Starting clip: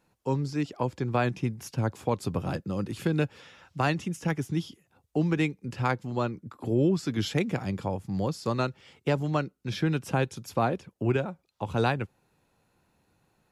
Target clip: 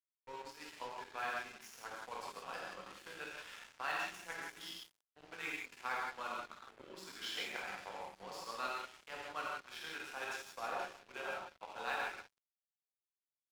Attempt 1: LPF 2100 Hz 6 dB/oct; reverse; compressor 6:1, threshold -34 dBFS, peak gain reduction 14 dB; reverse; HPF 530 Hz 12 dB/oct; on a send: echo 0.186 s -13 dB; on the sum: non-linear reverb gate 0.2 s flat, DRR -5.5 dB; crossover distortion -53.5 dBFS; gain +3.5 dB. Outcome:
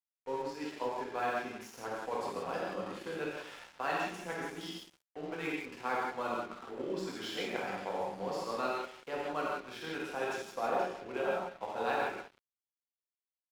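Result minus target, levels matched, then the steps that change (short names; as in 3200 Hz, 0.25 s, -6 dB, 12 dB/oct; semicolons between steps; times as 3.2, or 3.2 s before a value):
500 Hz band +6.5 dB
change: HPF 1200 Hz 12 dB/oct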